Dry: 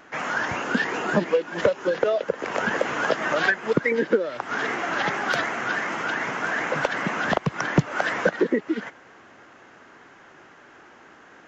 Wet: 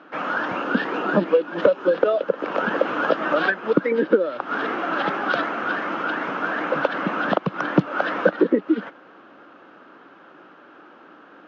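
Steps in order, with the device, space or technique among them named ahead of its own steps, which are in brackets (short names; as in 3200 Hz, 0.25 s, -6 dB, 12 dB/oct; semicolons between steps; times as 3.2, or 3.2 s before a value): kitchen radio (speaker cabinet 180–4000 Hz, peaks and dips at 190 Hz +5 dB, 300 Hz +8 dB, 540 Hz +5 dB, 1300 Hz +6 dB, 2000 Hz -9 dB)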